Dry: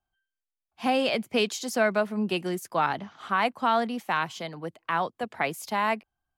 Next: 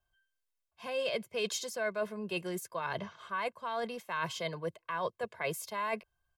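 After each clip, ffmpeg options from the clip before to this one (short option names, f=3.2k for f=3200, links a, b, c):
-af "areverse,acompressor=threshold=-34dB:ratio=6,areverse,aecho=1:1:1.9:0.77"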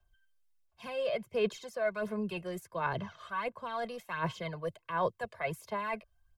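-filter_complex "[0:a]lowshelf=f=81:g=10,aphaser=in_gain=1:out_gain=1:delay=1.7:decay=0.51:speed=1.4:type=sinusoidal,acrossover=split=150|580|2500[a][b][c][d];[d]acompressor=threshold=-52dB:ratio=4[e];[a][b][c][e]amix=inputs=4:normalize=0,volume=-1dB"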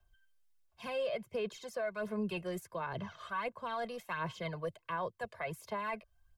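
-af "alimiter=level_in=5dB:limit=-24dB:level=0:latency=1:release=274,volume=-5dB,volume=1dB"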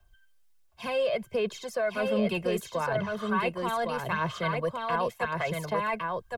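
-af "aecho=1:1:1110:0.668,volume=8dB"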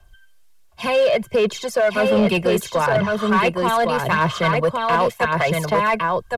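-filter_complex "[0:a]asplit=2[a][b];[b]aeval=exprs='0.0596*(abs(mod(val(0)/0.0596+3,4)-2)-1)':c=same,volume=-6dB[c];[a][c]amix=inputs=2:normalize=0,aresample=32000,aresample=44100,volume=8dB"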